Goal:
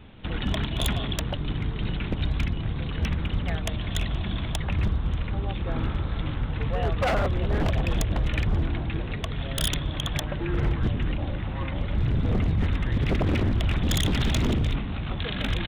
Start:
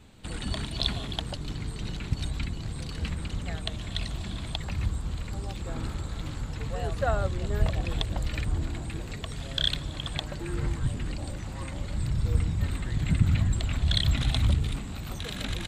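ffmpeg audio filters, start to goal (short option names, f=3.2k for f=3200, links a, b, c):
-af "aresample=8000,aresample=44100,aeval=exprs='0.0668*(abs(mod(val(0)/0.0668+3,4)-2)-1)':c=same,volume=6dB"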